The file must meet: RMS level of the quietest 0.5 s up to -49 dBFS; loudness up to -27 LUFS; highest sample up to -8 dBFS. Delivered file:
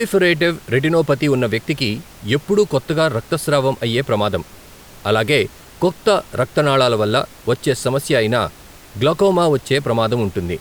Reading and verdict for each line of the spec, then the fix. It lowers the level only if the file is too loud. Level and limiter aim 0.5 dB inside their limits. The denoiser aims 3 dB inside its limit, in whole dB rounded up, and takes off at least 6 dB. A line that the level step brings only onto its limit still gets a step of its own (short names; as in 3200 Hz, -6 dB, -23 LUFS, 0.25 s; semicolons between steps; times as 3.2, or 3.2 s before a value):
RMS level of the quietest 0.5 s -41 dBFS: fail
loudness -18.0 LUFS: fail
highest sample -4.0 dBFS: fail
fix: gain -9.5 dB